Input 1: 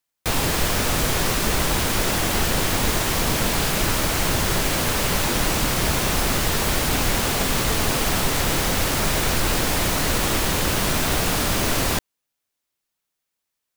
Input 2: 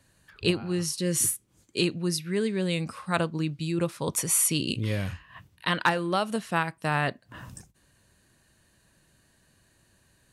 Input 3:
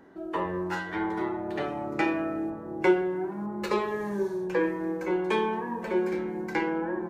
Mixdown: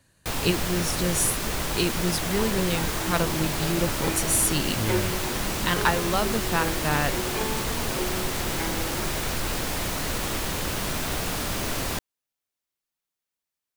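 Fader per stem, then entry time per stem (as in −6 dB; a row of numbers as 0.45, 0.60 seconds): −7.0, +0.5, −6.0 decibels; 0.00, 0.00, 2.05 seconds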